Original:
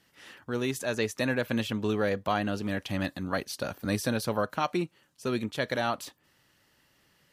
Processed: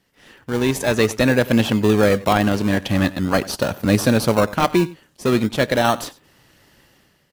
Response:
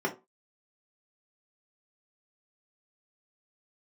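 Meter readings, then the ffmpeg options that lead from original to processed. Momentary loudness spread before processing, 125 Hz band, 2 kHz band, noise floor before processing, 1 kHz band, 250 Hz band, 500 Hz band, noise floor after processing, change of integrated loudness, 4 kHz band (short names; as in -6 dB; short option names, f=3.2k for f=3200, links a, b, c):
8 LU, +13.5 dB, +10.0 dB, -67 dBFS, +10.5 dB, +13.0 dB, +12.0 dB, -61 dBFS, +12.0 dB, +10.5 dB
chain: -filter_complex "[0:a]dynaudnorm=f=210:g=5:m=13dB,aecho=1:1:95:0.106,asplit=2[a][b];[b]acrusher=samples=26:mix=1:aa=0.000001:lfo=1:lforange=15.6:lforate=0.46,volume=-6dB[c];[a][c]amix=inputs=2:normalize=0,volume=-1.5dB"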